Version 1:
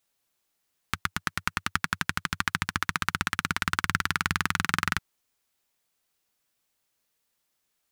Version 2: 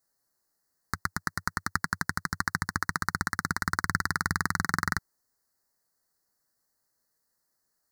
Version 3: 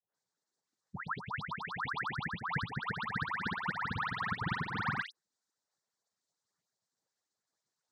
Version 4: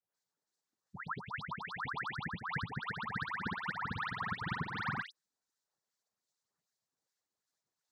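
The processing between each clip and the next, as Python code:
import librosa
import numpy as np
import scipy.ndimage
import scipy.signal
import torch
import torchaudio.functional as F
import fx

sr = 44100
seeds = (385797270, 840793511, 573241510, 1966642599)

y1 = scipy.signal.sosfilt(scipy.signal.ellip(3, 1.0, 50, [1900.0, 4300.0], 'bandstop', fs=sr, output='sos'), x)
y2 = fx.spec_expand(y1, sr, power=3.4)
y2 = fx.noise_vocoder(y2, sr, seeds[0], bands=6)
y2 = fx.dispersion(y2, sr, late='highs', ms=149.0, hz=1700.0)
y2 = y2 * 10.0 ** (-5.0 / 20.0)
y3 = fx.harmonic_tremolo(y2, sr, hz=2.6, depth_pct=50, crossover_hz=1400.0)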